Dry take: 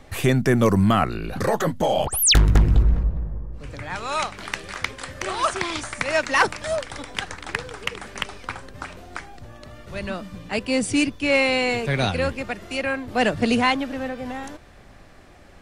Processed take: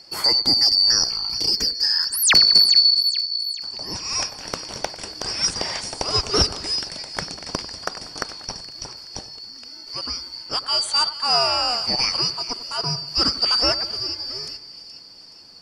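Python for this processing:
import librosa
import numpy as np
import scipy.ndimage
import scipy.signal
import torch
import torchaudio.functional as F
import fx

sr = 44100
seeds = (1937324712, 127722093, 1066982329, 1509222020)

y = fx.band_shuffle(x, sr, order='2341')
y = fx.echo_split(y, sr, split_hz=2200.0, low_ms=95, high_ms=423, feedback_pct=52, wet_db=-15)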